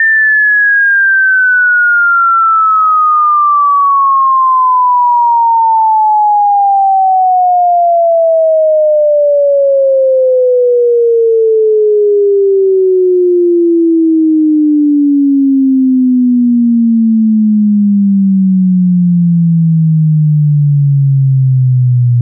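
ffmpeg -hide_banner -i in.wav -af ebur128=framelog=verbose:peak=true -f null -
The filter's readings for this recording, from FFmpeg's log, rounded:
Integrated loudness:
  I:          -8.2 LUFS
  Threshold: -18.2 LUFS
Loudness range:
  LRA:         1.9 LU
  Threshold: -28.3 LUFS
  LRA low:    -8.9 LUFS
  LRA high:   -7.0 LUFS
True peak:
  Peak:       -4.9 dBFS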